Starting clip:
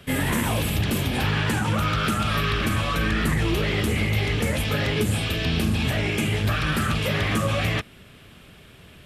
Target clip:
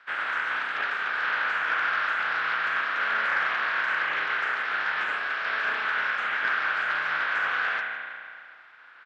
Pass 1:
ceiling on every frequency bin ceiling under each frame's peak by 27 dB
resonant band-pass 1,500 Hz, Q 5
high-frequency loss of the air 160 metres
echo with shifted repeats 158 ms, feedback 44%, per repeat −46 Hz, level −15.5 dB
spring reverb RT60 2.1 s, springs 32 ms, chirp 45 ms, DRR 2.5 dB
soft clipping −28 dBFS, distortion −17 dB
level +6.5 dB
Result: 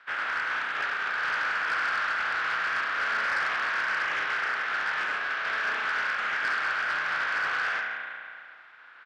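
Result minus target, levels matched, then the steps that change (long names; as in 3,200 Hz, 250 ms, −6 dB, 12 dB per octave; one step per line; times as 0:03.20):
soft clipping: distortion +13 dB
change: soft clipping −19.5 dBFS, distortion −30 dB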